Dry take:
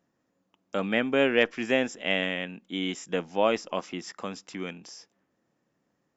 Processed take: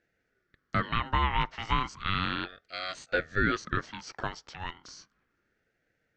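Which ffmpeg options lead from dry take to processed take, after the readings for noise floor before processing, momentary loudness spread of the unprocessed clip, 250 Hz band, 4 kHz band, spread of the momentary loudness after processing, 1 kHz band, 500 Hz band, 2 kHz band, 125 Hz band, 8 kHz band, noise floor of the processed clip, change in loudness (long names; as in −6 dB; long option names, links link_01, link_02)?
−77 dBFS, 15 LU, −7.0 dB, −2.5 dB, 13 LU, +4.5 dB, −11.5 dB, −2.0 dB, +6.5 dB, can't be measured, −78 dBFS, −3.0 dB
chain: -af "highpass=frequency=440:width=0.5412,highpass=frequency=440:width=1.3066,equalizer=frequency=880:width_type=q:width=4:gain=6,equalizer=frequency=1900:width_type=q:width=4:gain=-9,equalizer=frequency=3000:width_type=q:width=4:gain=-7,lowpass=frequency=4900:width=0.5412,lowpass=frequency=4900:width=1.3066,alimiter=limit=-19dB:level=0:latency=1:release=132,aeval=exprs='val(0)*sin(2*PI*730*n/s+730*0.4/0.34*sin(2*PI*0.34*n/s))':channel_layout=same,volume=6dB"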